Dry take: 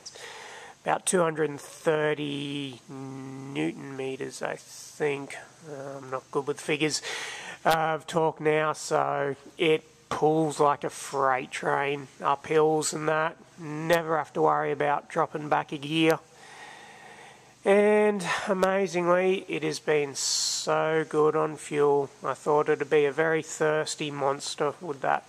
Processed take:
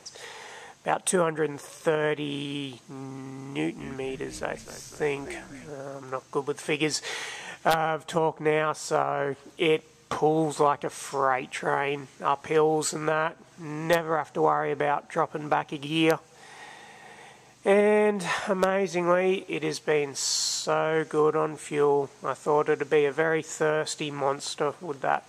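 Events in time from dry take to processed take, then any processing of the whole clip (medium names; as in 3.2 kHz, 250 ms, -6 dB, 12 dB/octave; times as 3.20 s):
3.53–5.71 s: frequency-shifting echo 246 ms, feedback 61%, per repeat -87 Hz, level -13.5 dB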